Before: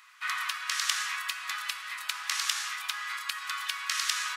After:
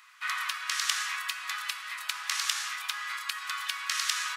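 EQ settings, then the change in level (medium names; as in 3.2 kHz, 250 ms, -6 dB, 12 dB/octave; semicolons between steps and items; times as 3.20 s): steep high-pass 320 Hz 36 dB/octave; 0.0 dB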